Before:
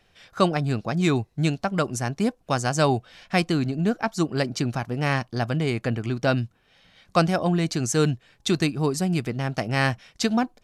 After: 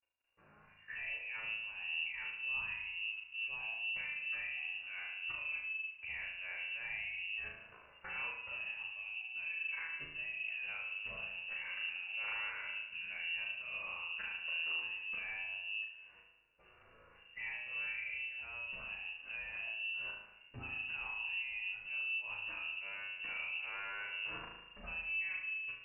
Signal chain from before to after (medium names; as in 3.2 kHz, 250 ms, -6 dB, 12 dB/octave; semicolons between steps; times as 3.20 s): hum notches 50/100/150/200/250/300/350 Hz; gate with hold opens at -47 dBFS; level rider gain up to 10.5 dB; peak limiter -19.5 dBFS, peak gain reduction 18 dB; time stretch by phase-locked vocoder 1.8×; level held to a coarse grid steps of 21 dB; flutter echo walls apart 4.7 m, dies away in 0.55 s; Schroeder reverb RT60 1.5 s, combs from 25 ms, DRR 15.5 dB; speed mistake 45 rpm record played at 33 rpm; frequency inversion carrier 2.8 kHz; trim -3 dB